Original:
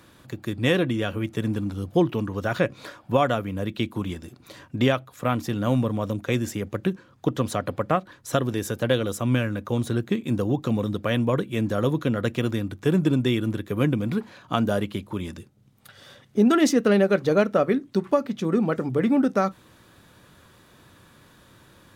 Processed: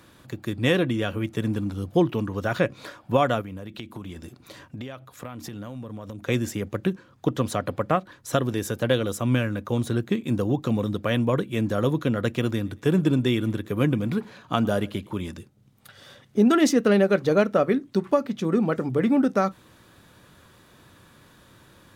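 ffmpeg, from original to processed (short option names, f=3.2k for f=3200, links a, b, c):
-filter_complex "[0:a]asplit=3[a][b][c];[a]afade=t=out:st=3.41:d=0.02[d];[b]acompressor=threshold=-32dB:ratio=10:attack=3.2:release=140:knee=1:detection=peak,afade=t=in:st=3.41:d=0.02,afade=t=out:st=6.25:d=0.02[e];[c]afade=t=in:st=6.25:d=0.02[f];[d][e][f]amix=inputs=3:normalize=0,asettb=1/sr,asplit=3[g][h][i];[g]atrim=end=12.514[j];[h]atrim=start=12.51:end=15.21,asetpts=PTS-STARTPTS,afade=t=in:d=0.004:c=qsin,afade=t=out:st=2.696:d=0.004:c=qsin,aecho=1:1:111|222:0.0668|0.0254,atrim=end_sample=119070[k];[i]atrim=start=15.206[l];[j][k]acrossfade=d=0.004:c1=hsin:c2=qsin[m];[m][l]acrossfade=d=0.004:c1=qsin:c2=hsin"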